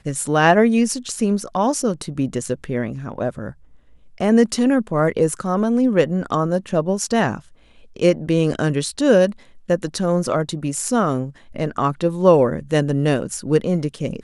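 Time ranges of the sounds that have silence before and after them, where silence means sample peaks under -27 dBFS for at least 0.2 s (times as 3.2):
4.21–7.39
7.96–9.32
9.7–11.29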